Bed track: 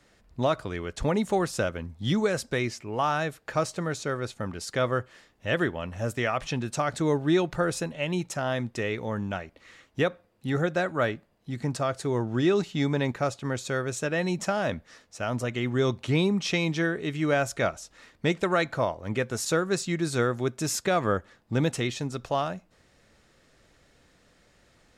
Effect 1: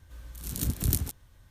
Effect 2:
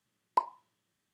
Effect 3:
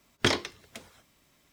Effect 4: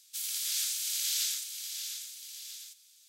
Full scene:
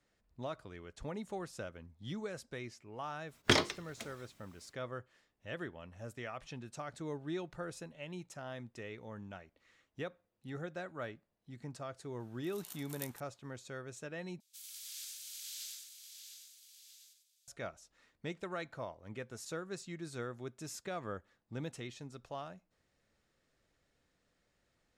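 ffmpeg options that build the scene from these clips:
-filter_complex "[0:a]volume=-16.5dB[a];[1:a]highpass=f=890:t=q:w=2.1[b];[4:a]aecho=1:1:96:0.501[c];[a]asplit=2[d][e];[d]atrim=end=14.404[f];[c]atrim=end=3.08,asetpts=PTS-STARTPTS,volume=-15.5dB[g];[e]atrim=start=17.476[h];[3:a]atrim=end=1.52,asetpts=PTS-STARTPTS,volume=-2.5dB,afade=t=in:d=0.1,afade=t=out:st=1.42:d=0.1,adelay=143325S[i];[b]atrim=end=1.5,asetpts=PTS-STARTPTS,volume=-15.5dB,afade=t=in:d=0.004:c=hsin,afade=t=out:st=1.496:d=0.004:c=hsin,adelay=12090[j];[f][g]acrossfade=d=0.004:c1=hsin:c2=hsin[k];[k][h]acrossfade=d=0.004:c1=hsin:c2=hsin[l];[l][i][j]amix=inputs=3:normalize=0"

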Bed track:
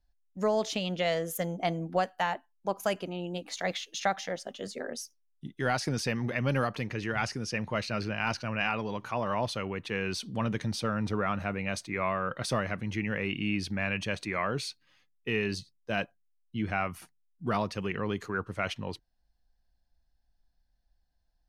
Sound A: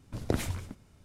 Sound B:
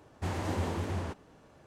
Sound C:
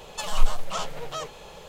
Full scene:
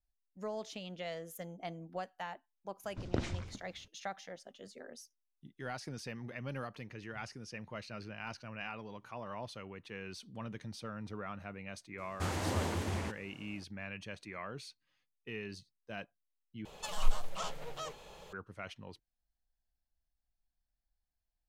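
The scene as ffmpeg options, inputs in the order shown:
-filter_complex "[0:a]volume=-13dB[a];[1:a]lowpass=f=6.3k:w=0.5412,lowpass=f=6.3k:w=1.3066[b];[2:a]highshelf=f=2.5k:g=7.5[c];[a]asplit=2[d][e];[d]atrim=end=16.654[f];[3:a]atrim=end=1.68,asetpts=PTS-STARTPTS,volume=-9dB[g];[e]atrim=start=18.326[h];[b]atrim=end=1.04,asetpts=PTS-STARTPTS,volume=-5dB,afade=t=in:d=0.004:c=hsin,afade=t=out:st=1.036:d=0.004:c=hsin,adelay=2840[i];[c]atrim=end=1.66,asetpts=PTS-STARTPTS,volume=-2.5dB,afade=t=in:d=0.004:c=hsin,afade=t=out:st=1.656:d=0.004:c=hsin,adelay=11980[j];[f][g]acrossfade=d=0.004:c1=hsin:c2=hsin[k];[k][h]acrossfade=d=0.004:c1=hsin:c2=hsin[l];[l][i][j]amix=inputs=3:normalize=0"

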